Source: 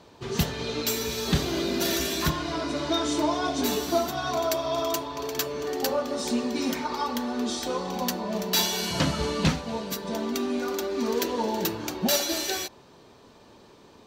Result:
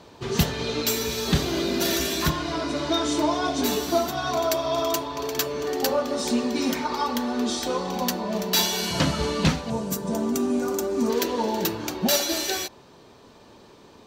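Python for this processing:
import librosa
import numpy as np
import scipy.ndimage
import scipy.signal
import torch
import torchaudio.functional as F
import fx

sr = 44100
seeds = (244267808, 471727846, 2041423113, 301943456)

p1 = fx.graphic_eq(x, sr, hz=(125, 2000, 4000, 8000), db=(11, -6, -9, 7), at=(9.7, 11.1))
p2 = fx.rider(p1, sr, range_db=10, speed_s=2.0)
p3 = p1 + (p2 * librosa.db_to_amplitude(-0.5))
y = p3 * librosa.db_to_amplitude(-3.5)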